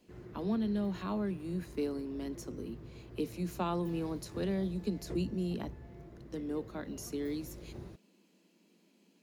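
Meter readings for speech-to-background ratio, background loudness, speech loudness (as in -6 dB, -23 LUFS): 12.5 dB, -49.5 LUFS, -37.0 LUFS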